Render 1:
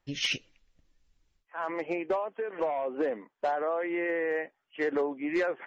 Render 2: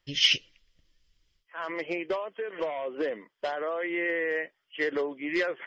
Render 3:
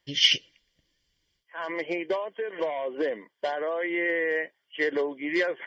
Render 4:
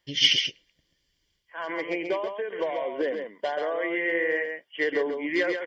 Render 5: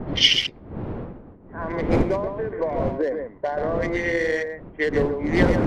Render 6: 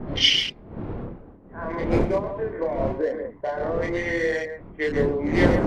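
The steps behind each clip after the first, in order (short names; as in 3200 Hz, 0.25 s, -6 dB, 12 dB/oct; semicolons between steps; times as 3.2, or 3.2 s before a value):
thirty-one-band EQ 250 Hz -6 dB, 800 Hz -9 dB, 2000 Hz +5 dB, 3150 Hz +11 dB, 5000 Hz +10 dB
notch comb 1300 Hz; gain +2.5 dB
echo 0.135 s -6 dB
Wiener smoothing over 15 samples; wind noise 330 Hz -32 dBFS; low-pass opened by the level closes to 1500 Hz, open at -19.5 dBFS; gain +4 dB
chorus voices 2, 0.46 Hz, delay 29 ms, depth 2.5 ms; gain +1.5 dB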